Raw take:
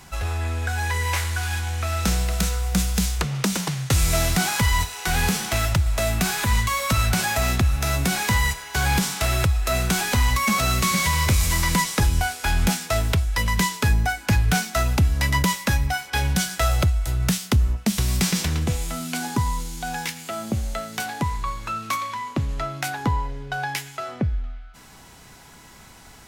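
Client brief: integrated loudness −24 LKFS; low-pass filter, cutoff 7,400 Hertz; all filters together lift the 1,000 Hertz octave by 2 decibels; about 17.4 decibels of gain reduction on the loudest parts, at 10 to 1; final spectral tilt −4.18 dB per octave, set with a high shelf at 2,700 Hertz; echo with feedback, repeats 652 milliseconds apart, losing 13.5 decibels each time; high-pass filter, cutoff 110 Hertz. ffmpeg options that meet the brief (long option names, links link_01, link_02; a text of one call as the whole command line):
ffmpeg -i in.wav -af "highpass=110,lowpass=7400,equalizer=frequency=1000:width_type=o:gain=3,highshelf=frequency=2700:gain=-4,acompressor=threshold=-36dB:ratio=10,aecho=1:1:652|1304:0.211|0.0444,volume=15.5dB" out.wav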